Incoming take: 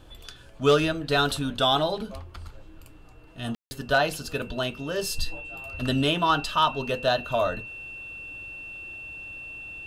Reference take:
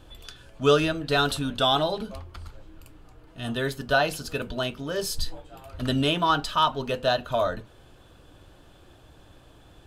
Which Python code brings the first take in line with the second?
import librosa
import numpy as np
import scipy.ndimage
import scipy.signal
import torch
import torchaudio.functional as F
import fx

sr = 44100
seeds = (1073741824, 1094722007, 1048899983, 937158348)

y = fx.fix_declip(x, sr, threshold_db=-11.0)
y = fx.notch(y, sr, hz=2700.0, q=30.0)
y = fx.fix_ambience(y, sr, seeds[0], print_start_s=0.04, print_end_s=0.54, start_s=3.55, end_s=3.71)